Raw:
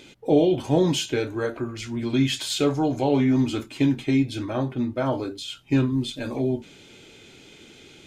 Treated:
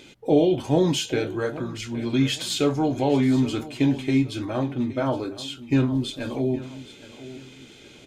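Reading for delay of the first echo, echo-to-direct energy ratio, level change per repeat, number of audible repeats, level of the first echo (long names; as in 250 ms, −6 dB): 818 ms, −15.5 dB, −9.0 dB, 2, −16.0 dB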